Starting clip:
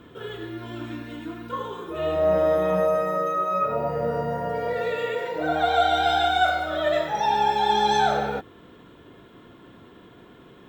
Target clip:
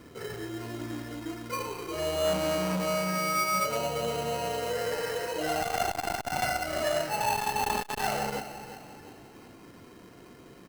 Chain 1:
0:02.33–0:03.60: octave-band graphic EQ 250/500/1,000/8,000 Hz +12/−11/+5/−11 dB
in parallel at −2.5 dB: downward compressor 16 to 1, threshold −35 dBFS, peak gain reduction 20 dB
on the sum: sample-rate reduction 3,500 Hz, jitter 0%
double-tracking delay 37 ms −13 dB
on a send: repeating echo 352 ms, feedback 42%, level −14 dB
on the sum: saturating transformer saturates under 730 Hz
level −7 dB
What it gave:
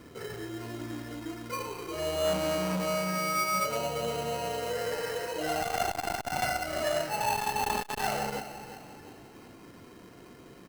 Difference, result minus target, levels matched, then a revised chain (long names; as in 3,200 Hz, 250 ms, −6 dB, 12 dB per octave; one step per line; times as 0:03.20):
downward compressor: peak gain reduction +7 dB
0:02.33–0:03.60: octave-band graphic EQ 250/500/1,000/8,000 Hz +12/−11/+5/−11 dB
in parallel at −2.5 dB: downward compressor 16 to 1, threshold −27.5 dBFS, peak gain reduction 13 dB
on the sum: sample-rate reduction 3,500 Hz, jitter 0%
double-tracking delay 37 ms −13 dB
on a send: repeating echo 352 ms, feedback 42%, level −14 dB
on the sum: saturating transformer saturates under 730 Hz
level −7 dB